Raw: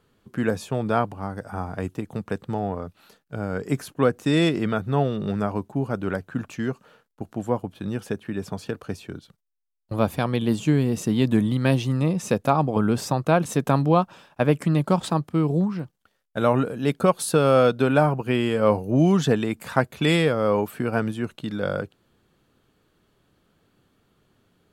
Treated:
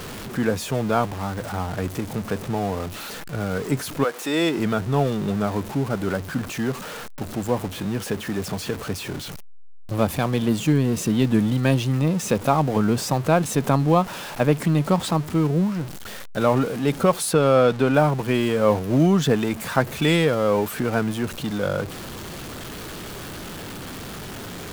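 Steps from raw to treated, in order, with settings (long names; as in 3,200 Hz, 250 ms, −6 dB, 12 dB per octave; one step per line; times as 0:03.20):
converter with a step at zero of −29 dBFS
0:04.03–0:04.57: high-pass filter 690 Hz → 200 Hz 12 dB per octave
0:17.31–0:17.93: high-shelf EQ 6,500 Hz → 10,000 Hz −9 dB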